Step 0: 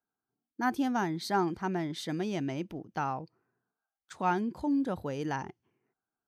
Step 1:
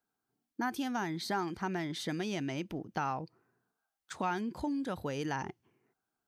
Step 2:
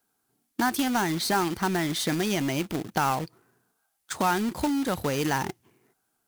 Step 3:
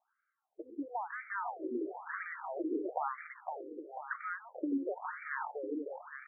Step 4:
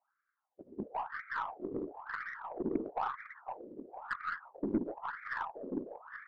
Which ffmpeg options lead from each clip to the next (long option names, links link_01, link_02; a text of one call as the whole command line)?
ffmpeg -i in.wav -filter_complex "[0:a]acrossover=split=1400[link_01][link_02];[link_01]acompressor=threshold=-37dB:ratio=6[link_03];[link_02]alimiter=level_in=11.5dB:limit=-24dB:level=0:latency=1:release=61,volume=-11.5dB[link_04];[link_03][link_04]amix=inputs=2:normalize=0,volume=4dB" out.wav
ffmpeg -i in.wav -af "equalizer=frequency=11000:width_type=o:width=1.1:gain=9,acrusher=bits=2:mode=log:mix=0:aa=0.000001,volume=8.5dB" out.wav
ffmpeg -i in.wav -filter_complex "[0:a]acrossover=split=200|2600[link_01][link_02][link_03];[link_01]acompressor=threshold=-40dB:ratio=4[link_04];[link_02]acompressor=threshold=-34dB:ratio=4[link_05];[link_03]acompressor=threshold=-37dB:ratio=4[link_06];[link_04][link_05][link_06]amix=inputs=3:normalize=0,asplit=2[link_07][link_08];[link_08]aecho=0:1:510|816|999.6|1110|1176:0.631|0.398|0.251|0.158|0.1[link_09];[link_07][link_09]amix=inputs=2:normalize=0,afftfilt=real='re*between(b*sr/1024,360*pow(1700/360,0.5+0.5*sin(2*PI*1*pts/sr))/1.41,360*pow(1700/360,0.5+0.5*sin(2*PI*1*pts/sr))*1.41)':imag='im*between(b*sr/1024,360*pow(1700/360,0.5+0.5*sin(2*PI*1*pts/sr))/1.41,360*pow(1700/360,0.5+0.5*sin(2*PI*1*pts/sr))*1.41)':win_size=1024:overlap=0.75,volume=1.5dB" out.wav
ffmpeg -i in.wav -af "highpass=120,equalizer=frequency=200:width_type=q:width=4:gain=-7,equalizer=frequency=450:width_type=q:width=4:gain=-8,equalizer=frequency=670:width_type=q:width=4:gain=-7,lowpass=frequency=2100:width=0.5412,lowpass=frequency=2100:width=1.3066,afftfilt=real='hypot(re,im)*cos(2*PI*random(0))':imag='hypot(re,im)*sin(2*PI*random(1))':win_size=512:overlap=0.75,aeval=exprs='0.0355*(cos(1*acos(clip(val(0)/0.0355,-1,1)))-cos(1*PI/2))+0.00282*(cos(2*acos(clip(val(0)/0.0355,-1,1)))-cos(2*PI/2))+0.0002*(cos(6*acos(clip(val(0)/0.0355,-1,1)))-cos(6*PI/2))+0.00141*(cos(7*acos(clip(val(0)/0.0355,-1,1)))-cos(7*PI/2))':channel_layout=same,volume=9dB" out.wav